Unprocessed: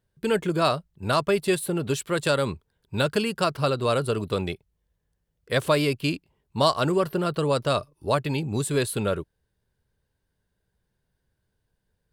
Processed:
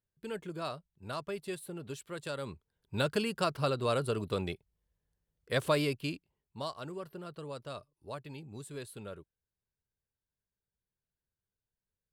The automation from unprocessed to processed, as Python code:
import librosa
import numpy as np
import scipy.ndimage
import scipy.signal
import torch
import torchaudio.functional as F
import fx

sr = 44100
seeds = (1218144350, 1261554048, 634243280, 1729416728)

y = fx.gain(x, sr, db=fx.line((2.32, -16.0), (2.95, -7.0), (5.8, -7.0), (6.74, -19.0)))